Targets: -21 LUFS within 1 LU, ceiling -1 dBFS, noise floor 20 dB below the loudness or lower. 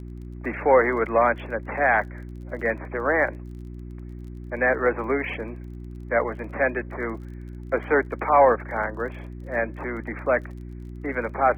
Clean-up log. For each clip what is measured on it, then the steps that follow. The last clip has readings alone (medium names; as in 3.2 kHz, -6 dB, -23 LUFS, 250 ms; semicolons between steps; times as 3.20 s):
tick rate 30 per s; hum 60 Hz; highest harmonic 360 Hz; hum level -35 dBFS; loudness -24.0 LUFS; peak level -5.0 dBFS; loudness target -21.0 LUFS
-> de-click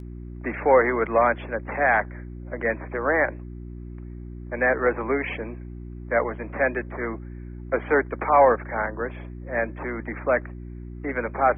tick rate 0.086 per s; hum 60 Hz; highest harmonic 360 Hz; hum level -35 dBFS
-> de-hum 60 Hz, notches 6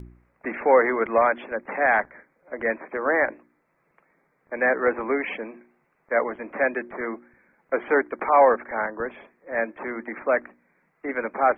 hum not found; loudness -24.0 LUFS; peak level -5.5 dBFS; loudness target -21.0 LUFS
-> trim +3 dB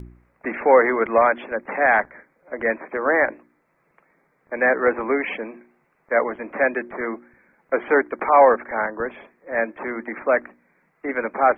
loudness -21.0 LUFS; peak level -2.5 dBFS; noise floor -66 dBFS